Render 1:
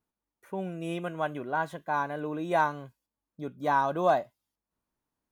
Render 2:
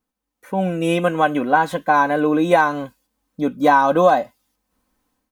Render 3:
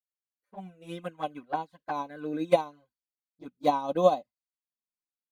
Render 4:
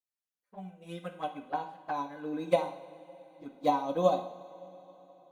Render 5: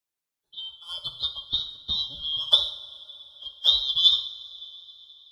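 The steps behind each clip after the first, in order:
compression, threshold -26 dBFS, peak gain reduction 8 dB; comb 3.9 ms, depth 61%; level rider gain up to 11 dB; trim +4 dB
peaking EQ 4.5 kHz +12.5 dB 0.24 oct; touch-sensitive flanger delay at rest 9.8 ms, full sweep at -12 dBFS; upward expansion 2.5:1, over -34 dBFS; trim -3.5 dB
two-slope reverb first 0.6 s, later 4 s, from -18 dB, DRR 5 dB; trim -3.5 dB
four frequency bands reordered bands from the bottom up 2413; trim +6 dB

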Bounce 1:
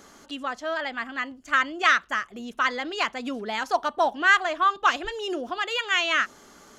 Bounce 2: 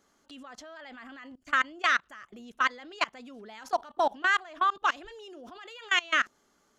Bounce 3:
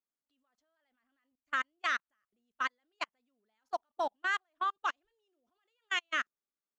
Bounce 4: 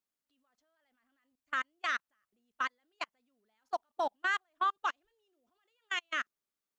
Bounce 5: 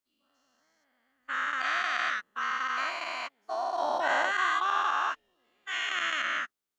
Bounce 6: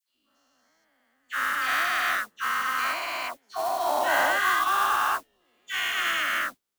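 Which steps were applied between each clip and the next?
level held to a coarse grid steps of 23 dB
upward expansion 2.5:1, over -41 dBFS; trim -6 dB
peak limiter -25 dBFS, peak gain reduction 6 dB; trim +2.5 dB
every event in the spectrogram widened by 480 ms; trim -4 dB
phase dispersion lows, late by 88 ms, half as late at 1.3 kHz; modulation noise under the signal 15 dB; trim +4 dB

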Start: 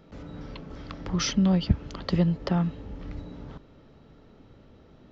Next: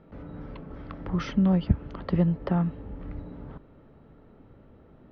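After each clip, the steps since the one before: low-pass 1.9 kHz 12 dB/octave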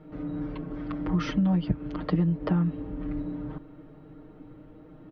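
peaking EQ 300 Hz +8 dB 0.31 oct; comb 6.5 ms, depth 97%; compression 6:1, threshold -21 dBFS, peak gain reduction 8.5 dB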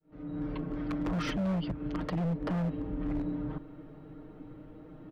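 fade-in on the opening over 0.55 s; peak limiter -22 dBFS, peak gain reduction 9.5 dB; wavefolder -26 dBFS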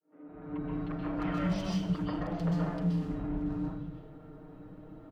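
three bands offset in time mids, lows, highs 190/310 ms, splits 230/2600 Hz; plate-style reverb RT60 0.55 s, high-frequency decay 0.95×, pre-delay 115 ms, DRR -4 dB; trim -4.5 dB

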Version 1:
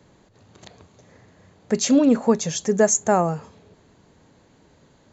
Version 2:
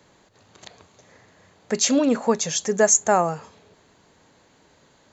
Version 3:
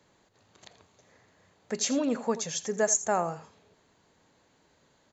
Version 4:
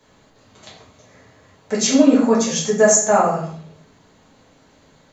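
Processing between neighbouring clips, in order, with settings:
bass shelf 440 Hz -10.5 dB; trim +3.5 dB
delay 83 ms -15 dB; trim -8.5 dB
simulated room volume 70 m³, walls mixed, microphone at 1.5 m; trim +4.5 dB

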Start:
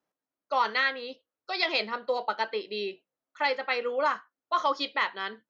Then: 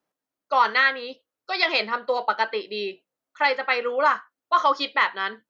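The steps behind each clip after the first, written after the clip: dynamic bell 1.4 kHz, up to +5 dB, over -40 dBFS, Q 0.82; trim +3 dB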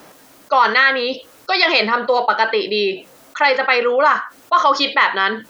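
level flattener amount 50%; trim +4.5 dB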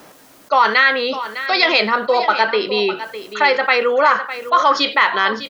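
delay 605 ms -12.5 dB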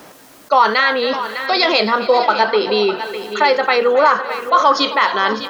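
wow and flutter 16 cents; dynamic bell 2.2 kHz, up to -7 dB, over -29 dBFS, Q 1.1; two-band feedback delay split 560 Hz, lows 519 ms, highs 267 ms, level -15 dB; trim +3 dB

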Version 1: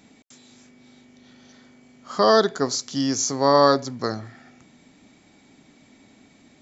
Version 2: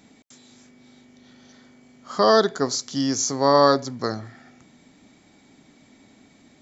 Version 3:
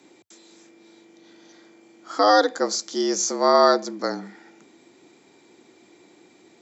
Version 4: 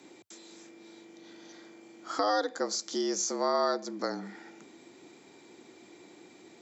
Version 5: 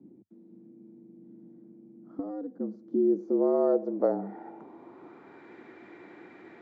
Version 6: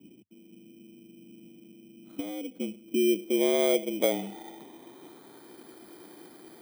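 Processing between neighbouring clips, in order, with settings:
peaking EQ 2.6 kHz -3 dB 0.27 oct
frequency shift +87 Hz
compression 2:1, threshold -34 dBFS, peak gain reduction 12.5 dB
low-pass sweep 210 Hz -> 1.7 kHz, 2.54–5.54 s; trim +3.5 dB
bit-reversed sample order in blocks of 16 samples

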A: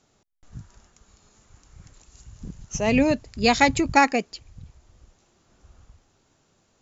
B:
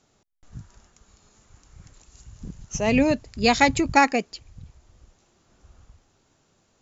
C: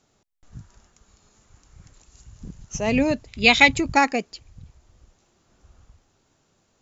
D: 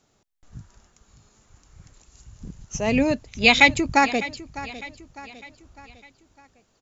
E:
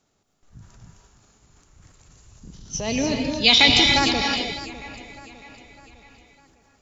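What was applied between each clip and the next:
no audible change
time-frequency box 3.28–3.72 s, 2–4.1 kHz +11 dB; trim -1 dB
feedback delay 604 ms, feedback 47%, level -16.5 dB
time-frequency box 2.54–4.35 s, 2.9–6.2 kHz +11 dB; transient shaper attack -1 dB, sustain +8 dB; gated-style reverb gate 330 ms rising, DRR 1.5 dB; trim -4.5 dB

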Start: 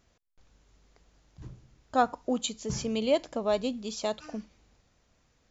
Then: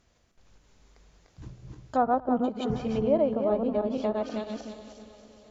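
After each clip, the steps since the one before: backward echo that repeats 159 ms, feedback 51%, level -1 dB; multi-head delay 232 ms, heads first and third, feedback 58%, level -24 dB; low-pass that closes with the level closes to 970 Hz, closed at -23.5 dBFS; trim +1 dB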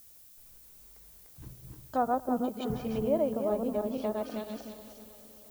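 added noise violet -51 dBFS; trim -4 dB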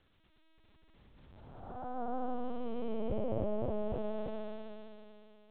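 spectral blur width 597 ms; LPC vocoder at 8 kHz pitch kept

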